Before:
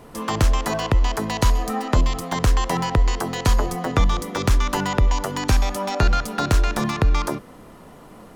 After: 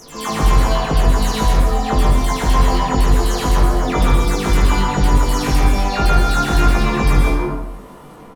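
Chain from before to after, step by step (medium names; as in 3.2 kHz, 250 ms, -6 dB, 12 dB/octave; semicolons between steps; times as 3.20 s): delay that grows with frequency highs early, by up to 197 ms; early reflections 20 ms -3 dB, 75 ms -10 dB; plate-style reverb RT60 0.93 s, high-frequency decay 0.65×, pre-delay 105 ms, DRR -1 dB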